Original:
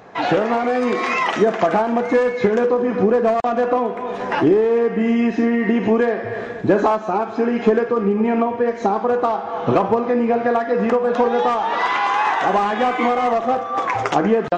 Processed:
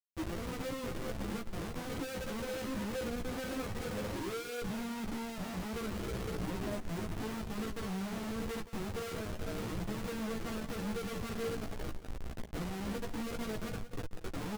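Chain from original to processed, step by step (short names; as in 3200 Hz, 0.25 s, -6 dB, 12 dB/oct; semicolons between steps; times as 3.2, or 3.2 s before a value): Doppler pass-by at 4.97, 20 m/s, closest 15 m; Chebyshev band-pass 200–520 Hz, order 2; tilt -4 dB/oct; comb 6.1 ms, depth 38%; compressor 6:1, threshold -36 dBFS, peak gain reduction 26 dB; Schmitt trigger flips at -39.5 dBFS; echo 0.177 s -13.5 dB; chorus voices 4, 0.19 Hz, delay 14 ms, depth 4.6 ms; gain +3.5 dB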